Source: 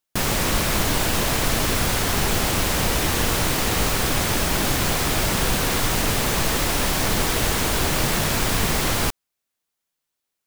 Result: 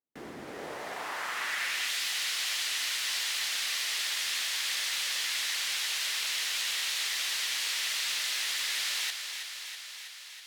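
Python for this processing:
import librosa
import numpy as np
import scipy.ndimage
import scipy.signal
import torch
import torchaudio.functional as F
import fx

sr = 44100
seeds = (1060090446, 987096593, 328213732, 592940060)

y = scipy.signal.sosfilt(scipy.signal.butter(2, 40.0, 'highpass', fs=sr, output='sos'), x)
y = fx.high_shelf(y, sr, hz=4900.0, db=8.5)
y = 10.0 ** (-19.0 / 20.0) * (np.abs((y / 10.0 ** (-19.0 / 20.0) + 3.0) % 4.0 - 2.0) - 1.0)
y = y * np.sin(2.0 * np.pi * 1900.0 * np.arange(len(y)) / sr)
y = fx.echo_thinned(y, sr, ms=324, feedback_pct=72, hz=210.0, wet_db=-8)
y = fx.filter_sweep_bandpass(y, sr, from_hz=280.0, to_hz=3500.0, start_s=0.37, end_s=1.96, q=1.3)
y = y * 10.0 ** (1.0 / 20.0)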